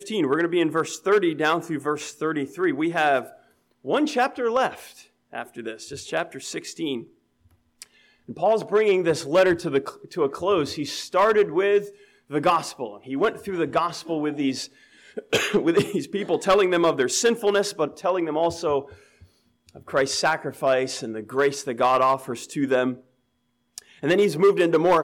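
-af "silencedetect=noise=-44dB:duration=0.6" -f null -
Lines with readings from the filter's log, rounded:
silence_start: 7.06
silence_end: 7.82 | silence_duration: 0.76
silence_start: 23.00
silence_end: 23.78 | silence_duration: 0.78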